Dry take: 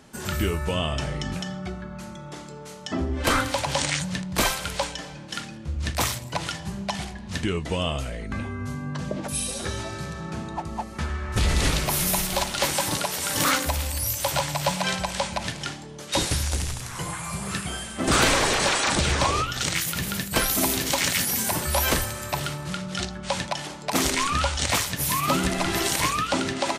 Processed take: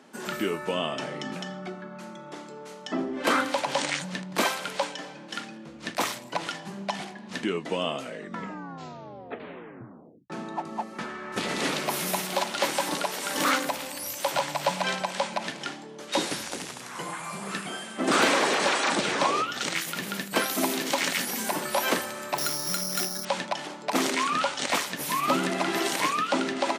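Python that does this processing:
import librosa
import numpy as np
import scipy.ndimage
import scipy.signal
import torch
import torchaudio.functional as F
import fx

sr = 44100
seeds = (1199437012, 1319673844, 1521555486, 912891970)

y = fx.resample_bad(x, sr, factor=8, down='filtered', up='zero_stuff', at=(22.38, 23.25))
y = fx.edit(y, sr, fx.tape_stop(start_s=8.03, length_s=2.27), tone=tone)
y = scipy.signal.sosfilt(scipy.signal.butter(4, 210.0, 'highpass', fs=sr, output='sos'), y)
y = fx.high_shelf(y, sr, hz=4400.0, db=-9.0)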